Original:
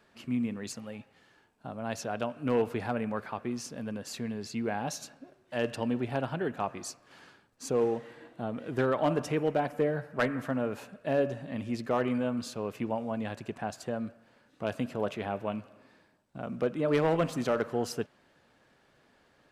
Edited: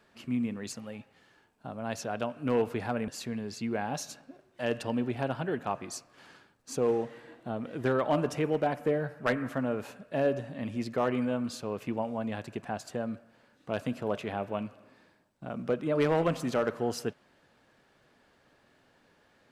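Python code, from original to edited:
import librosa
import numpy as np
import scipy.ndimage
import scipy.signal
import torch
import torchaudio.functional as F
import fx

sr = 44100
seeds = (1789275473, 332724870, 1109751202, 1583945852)

y = fx.edit(x, sr, fx.cut(start_s=3.08, length_s=0.93), tone=tone)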